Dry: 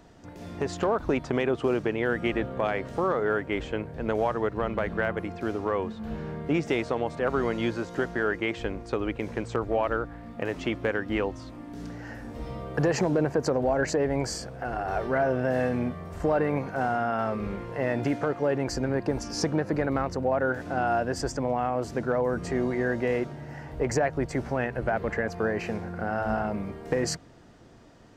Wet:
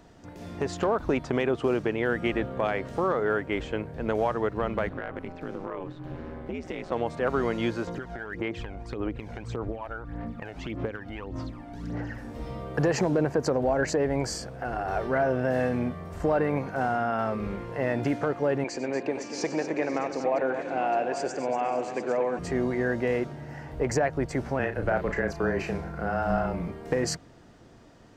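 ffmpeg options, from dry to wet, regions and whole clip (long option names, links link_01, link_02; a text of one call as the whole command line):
ffmpeg -i in.wav -filter_complex "[0:a]asettb=1/sr,asplit=3[link_01][link_02][link_03];[link_01]atrim=end=4.894[link_04];[link_02]atrim=start=4.89:end=6.92,asetpts=PTS-STARTPTS,afade=type=in:duration=0.004:curve=qsin,afade=type=out:start_time=2.026:duration=0.004:curve=qsin,bass=frequency=250:gain=-1,treble=frequency=4000:gain=-6,aeval=exprs='val(0)*sin(2*PI*85*n/s)':channel_layout=same,acompressor=threshold=-29dB:ratio=6:attack=3.2:release=140:knee=1:detection=peak[link_05];[link_03]atrim=start=6.916[link_06];[link_04][link_05]acrossfade=duration=0.004:curve1=hsin:curve2=qsin[link_07];[link_07][link_06]acrossfade=duration=0.004:curve1=qsin:curve2=hsin,asettb=1/sr,asplit=3[link_08][link_09][link_10];[link_08]atrim=end=7.874[link_11];[link_09]atrim=start=7.87:end=12.18,asetpts=PTS-STARTPTS,afade=type=in:duration=0.004:curve=qsin,afade=type=out:start_time=4.306:duration=0.004:curve=qsin,highshelf=frequency=5800:gain=-9.5,acompressor=threshold=-34dB:ratio=4:attack=3.2:release=140:knee=1:detection=peak,aphaser=in_gain=1:out_gain=1:delay=1.4:decay=0.6:speed=1.7:type=sinusoidal[link_12];[link_10]atrim=start=12.176[link_13];[link_11][link_12]acrossfade=duration=0.004:curve1=hsin:curve2=qsin[link_14];[link_14][link_13]acrossfade=duration=0.004:curve1=qsin:curve2=hsin,asettb=1/sr,asplit=3[link_15][link_16][link_17];[link_15]atrim=end=18.644[link_18];[link_16]atrim=start=18.64:end=22.39,asetpts=PTS-STARTPTS,afade=type=in:duration=0.004:curve=qsin,afade=type=out:start_time=3.746:duration=0.004:curve=qsin,highpass=300,equalizer=frequency=1400:width_type=q:width=4:gain=-8,equalizer=frequency=2400:width_type=q:width=4:gain=9,equalizer=frequency=5200:width_type=q:width=4:gain=-8,lowpass=frequency=7500:width=0.5412,lowpass=frequency=7500:width=1.3066,aecho=1:1:95|237|488|557|801:0.2|0.316|0.112|0.141|0.251,atrim=end_sample=165375[link_19];[link_17]atrim=start=22.386[link_20];[link_18][link_19]acrossfade=duration=0.004:curve1=hsin:curve2=qsin[link_21];[link_21][link_20]acrossfade=duration=0.004:curve1=qsin:curve2=hsin,asettb=1/sr,asplit=3[link_22][link_23][link_24];[link_22]atrim=end=24.594[link_25];[link_23]atrim=start=24.59:end=26.68,asetpts=PTS-STARTPTS,afade=type=in:duration=0.004:curve=qsin,afade=type=out:start_time=2.086:duration=0.004:curve=qsin,afreqshift=-22,asplit=2[link_26][link_27];[link_27]adelay=35,volume=-7dB[link_28];[link_26][link_28]amix=inputs=2:normalize=0,atrim=end_sample=92169[link_29];[link_24]atrim=start=26.676[link_30];[link_25][link_29]acrossfade=duration=0.004:curve1=hsin:curve2=qsin[link_31];[link_31][link_30]acrossfade=duration=0.004:curve1=qsin:curve2=hsin" out.wav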